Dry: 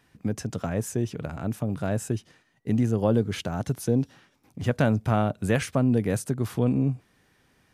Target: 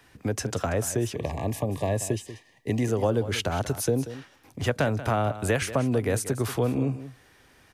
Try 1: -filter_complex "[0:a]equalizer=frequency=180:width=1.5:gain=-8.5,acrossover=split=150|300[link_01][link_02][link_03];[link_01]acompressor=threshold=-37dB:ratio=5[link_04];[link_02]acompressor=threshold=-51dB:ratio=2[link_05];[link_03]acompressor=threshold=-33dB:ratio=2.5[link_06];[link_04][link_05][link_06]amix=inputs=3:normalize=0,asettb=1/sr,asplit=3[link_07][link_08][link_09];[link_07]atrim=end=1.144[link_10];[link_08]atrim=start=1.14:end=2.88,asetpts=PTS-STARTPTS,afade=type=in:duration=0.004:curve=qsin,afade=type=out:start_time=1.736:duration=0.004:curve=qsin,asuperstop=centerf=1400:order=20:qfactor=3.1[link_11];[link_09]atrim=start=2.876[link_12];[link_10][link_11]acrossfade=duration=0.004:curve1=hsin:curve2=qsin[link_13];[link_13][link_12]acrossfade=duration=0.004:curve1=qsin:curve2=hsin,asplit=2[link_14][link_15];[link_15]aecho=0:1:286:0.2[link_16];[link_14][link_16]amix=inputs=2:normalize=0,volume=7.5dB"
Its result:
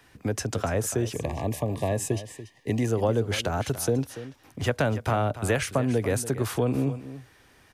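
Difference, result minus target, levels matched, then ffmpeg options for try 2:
echo 100 ms late
-filter_complex "[0:a]equalizer=frequency=180:width=1.5:gain=-8.5,acrossover=split=150|300[link_01][link_02][link_03];[link_01]acompressor=threshold=-37dB:ratio=5[link_04];[link_02]acompressor=threshold=-51dB:ratio=2[link_05];[link_03]acompressor=threshold=-33dB:ratio=2.5[link_06];[link_04][link_05][link_06]amix=inputs=3:normalize=0,asettb=1/sr,asplit=3[link_07][link_08][link_09];[link_07]atrim=end=1.144[link_10];[link_08]atrim=start=1.14:end=2.88,asetpts=PTS-STARTPTS,afade=type=in:duration=0.004:curve=qsin,afade=type=out:start_time=1.736:duration=0.004:curve=qsin,asuperstop=centerf=1400:order=20:qfactor=3.1[link_11];[link_09]atrim=start=2.876[link_12];[link_10][link_11]acrossfade=duration=0.004:curve1=hsin:curve2=qsin[link_13];[link_13][link_12]acrossfade=duration=0.004:curve1=qsin:curve2=hsin,asplit=2[link_14][link_15];[link_15]aecho=0:1:186:0.2[link_16];[link_14][link_16]amix=inputs=2:normalize=0,volume=7.5dB"

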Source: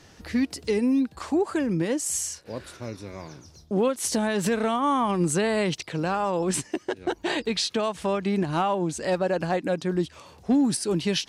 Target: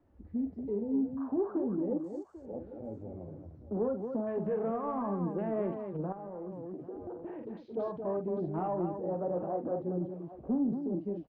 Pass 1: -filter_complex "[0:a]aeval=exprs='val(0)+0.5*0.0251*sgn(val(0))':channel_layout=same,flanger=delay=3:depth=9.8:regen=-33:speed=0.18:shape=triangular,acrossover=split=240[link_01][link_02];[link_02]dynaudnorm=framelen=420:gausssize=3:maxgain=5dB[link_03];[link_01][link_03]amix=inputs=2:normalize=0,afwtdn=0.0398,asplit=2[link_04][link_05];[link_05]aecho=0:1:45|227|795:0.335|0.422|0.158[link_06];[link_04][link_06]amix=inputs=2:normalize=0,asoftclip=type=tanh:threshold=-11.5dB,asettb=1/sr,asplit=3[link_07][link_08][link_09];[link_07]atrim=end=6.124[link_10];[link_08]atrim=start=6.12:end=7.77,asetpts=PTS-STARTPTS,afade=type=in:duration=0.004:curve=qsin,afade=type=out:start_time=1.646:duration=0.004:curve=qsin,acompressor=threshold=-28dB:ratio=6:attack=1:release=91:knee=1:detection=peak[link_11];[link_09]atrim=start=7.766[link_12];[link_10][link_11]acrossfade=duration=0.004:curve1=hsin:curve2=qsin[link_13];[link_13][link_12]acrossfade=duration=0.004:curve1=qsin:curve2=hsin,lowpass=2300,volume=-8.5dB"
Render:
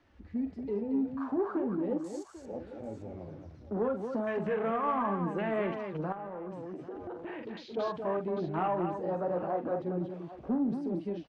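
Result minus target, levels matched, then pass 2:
2,000 Hz band +13.0 dB
-filter_complex "[0:a]aeval=exprs='val(0)+0.5*0.0251*sgn(val(0))':channel_layout=same,flanger=delay=3:depth=9.8:regen=-33:speed=0.18:shape=triangular,acrossover=split=240[link_01][link_02];[link_02]dynaudnorm=framelen=420:gausssize=3:maxgain=5dB[link_03];[link_01][link_03]amix=inputs=2:normalize=0,afwtdn=0.0398,asplit=2[link_04][link_05];[link_05]aecho=0:1:45|227|795:0.335|0.422|0.158[link_06];[link_04][link_06]amix=inputs=2:normalize=0,asoftclip=type=tanh:threshold=-11.5dB,asettb=1/sr,asplit=3[link_07][link_08][link_09];[link_07]atrim=end=6.124[link_10];[link_08]atrim=start=6.12:end=7.77,asetpts=PTS-STARTPTS,afade=type=in:duration=0.004:curve=qsin,afade=type=out:start_time=1.646:duration=0.004:curve=qsin,acompressor=threshold=-28dB:ratio=6:attack=1:release=91:knee=1:detection=peak[link_11];[link_09]atrim=start=7.766[link_12];[link_10][link_11]acrossfade=duration=0.004:curve1=hsin:curve2=qsin[link_13];[link_13][link_12]acrossfade=duration=0.004:curve1=qsin:curve2=hsin,lowpass=710,volume=-8.5dB"

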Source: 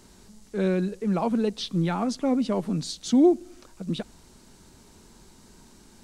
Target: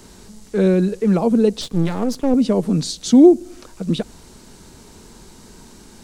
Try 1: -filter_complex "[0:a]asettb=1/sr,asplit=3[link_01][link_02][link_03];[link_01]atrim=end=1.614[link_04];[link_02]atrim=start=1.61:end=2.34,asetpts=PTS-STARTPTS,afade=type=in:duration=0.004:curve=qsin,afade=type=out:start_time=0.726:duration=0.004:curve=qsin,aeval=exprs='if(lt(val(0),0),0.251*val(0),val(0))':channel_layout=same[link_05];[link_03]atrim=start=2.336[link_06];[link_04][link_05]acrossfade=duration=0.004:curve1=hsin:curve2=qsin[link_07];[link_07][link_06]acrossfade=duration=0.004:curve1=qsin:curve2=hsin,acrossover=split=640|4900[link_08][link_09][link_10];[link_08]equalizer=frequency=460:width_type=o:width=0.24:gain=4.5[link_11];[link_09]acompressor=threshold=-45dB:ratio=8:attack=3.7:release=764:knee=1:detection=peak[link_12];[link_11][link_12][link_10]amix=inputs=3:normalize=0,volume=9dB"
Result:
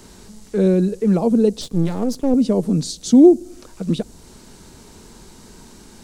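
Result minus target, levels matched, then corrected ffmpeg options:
downward compressor: peak gain reduction +7 dB
-filter_complex "[0:a]asettb=1/sr,asplit=3[link_01][link_02][link_03];[link_01]atrim=end=1.614[link_04];[link_02]atrim=start=1.61:end=2.34,asetpts=PTS-STARTPTS,afade=type=in:duration=0.004:curve=qsin,afade=type=out:start_time=0.726:duration=0.004:curve=qsin,aeval=exprs='if(lt(val(0),0),0.251*val(0),val(0))':channel_layout=same[link_05];[link_03]atrim=start=2.336[link_06];[link_04][link_05]acrossfade=duration=0.004:curve1=hsin:curve2=qsin[link_07];[link_07][link_06]acrossfade=duration=0.004:curve1=qsin:curve2=hsin,acrossover=split=640|4900[link_08][link_09][link_10];[link_08]equalizer=frequency=460:width_type=o:width=0.24:gain=4.5[link_11];[link_09]acompressor=threshold=-37dB:ratio=8:attack=3.7:release=764:knee=1:detection=peak[link_12];[link_11][link_12][link_10]amix=inputs=3:normalize=0,volume=9dB"

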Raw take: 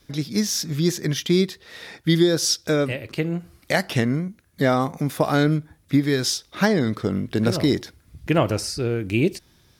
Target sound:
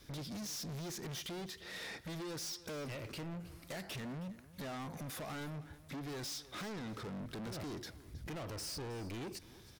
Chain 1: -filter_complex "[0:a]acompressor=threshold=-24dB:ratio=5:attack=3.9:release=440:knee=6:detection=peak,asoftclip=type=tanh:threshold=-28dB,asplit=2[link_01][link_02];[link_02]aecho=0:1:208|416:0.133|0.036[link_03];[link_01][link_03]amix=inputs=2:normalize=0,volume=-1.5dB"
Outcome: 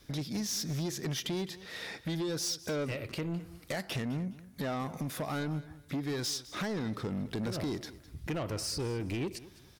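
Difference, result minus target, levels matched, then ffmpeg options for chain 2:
echo 110 ms early; soft clipping: distortion −7 dB
-filter_complex "[0:a]acompressor=threshold=-24dB:ratio=5:attack=3.9:release=440:knee=6:detection=peak,asoftclip=type=tanh:threshold=-40dB,asplit=2[link_01][link_02];[link_02]aecho=0:1:318|636:0.133|0.036[link_03];[link_01][link_03]amix=inputs=2:normalize=0,volume=-1.5dB"

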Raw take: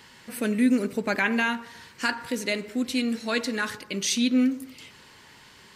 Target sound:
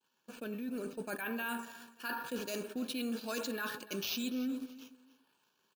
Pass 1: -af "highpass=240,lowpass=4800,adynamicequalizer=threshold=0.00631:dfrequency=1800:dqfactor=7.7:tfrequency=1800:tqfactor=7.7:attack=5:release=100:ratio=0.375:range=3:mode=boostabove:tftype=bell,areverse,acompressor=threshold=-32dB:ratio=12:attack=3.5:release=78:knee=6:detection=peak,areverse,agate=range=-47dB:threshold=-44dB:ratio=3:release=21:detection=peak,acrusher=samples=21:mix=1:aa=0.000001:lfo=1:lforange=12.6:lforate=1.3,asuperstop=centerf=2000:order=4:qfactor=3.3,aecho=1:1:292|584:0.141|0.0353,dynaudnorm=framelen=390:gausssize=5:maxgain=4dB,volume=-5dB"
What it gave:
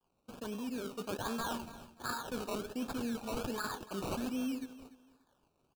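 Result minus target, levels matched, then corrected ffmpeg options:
sample-and-hold swept by an LFO: distortion +11 dB
-af "highpass=240,lowpass=4800,adynamicequalizer=threshold=0.00631:dfrequency=1800:dqfactor=7.7:tfrequency=1800:tqfactor=7.7:attack=5:release=100:ratio=0.375:range=3:mode=boostabove:tftype=bell,areverse,acompressor=threshold=-32dB:ratio=12:attack=3.5:release=78:knee=6:detection=peak,areverse,agate=range=-47dB:threshold=-44dB:ratio=3:release=21:detection=peak,acrusher=samples=4:mix=1:aa=0.000001:lfo=1:lforange=2.4:lforate=1.3,asuperstop=centerf=2000:order=4:qfactor=3.3,aecho=1:1:292|584:0.141|0.0353,dynaudnorm=framelen=390:gausssize=5:maxgain=4dB,volume=-5dB"

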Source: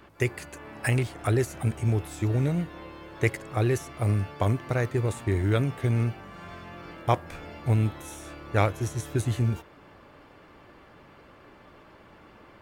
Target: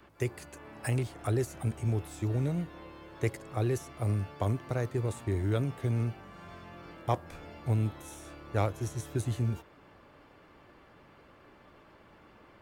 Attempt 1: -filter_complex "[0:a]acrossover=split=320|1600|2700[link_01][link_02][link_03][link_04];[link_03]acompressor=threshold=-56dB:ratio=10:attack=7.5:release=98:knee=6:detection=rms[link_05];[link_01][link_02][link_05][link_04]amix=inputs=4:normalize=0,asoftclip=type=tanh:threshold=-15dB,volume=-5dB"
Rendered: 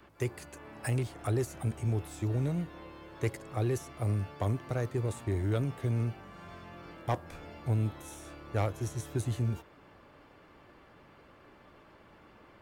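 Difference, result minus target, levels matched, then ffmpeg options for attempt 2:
soft clipping: distortion +14 dB
-filter_complex "[0:a]acrossover=split=320|1600|2700[link_01][link_02][link_03][link_04];[link_03]acompressor=threshold=-56dB:ratio=10:attack=7.5:release=98:knee=6:detection=rms[link_05];[link_01][link_02][link_05][link_04]amix=inputs=4:normalize=0,asoftclip=type=tanh:threshold=-6dB,volume=-5dB"

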